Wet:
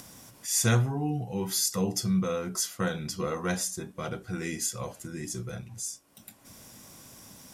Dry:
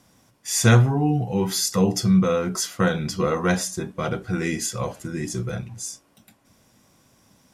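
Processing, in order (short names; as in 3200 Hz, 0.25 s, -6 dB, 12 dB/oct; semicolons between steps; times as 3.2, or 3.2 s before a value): high shelf 6100 Hz +10.5 dB; upward compressor, threshold -27 dBFS; gain -9 dB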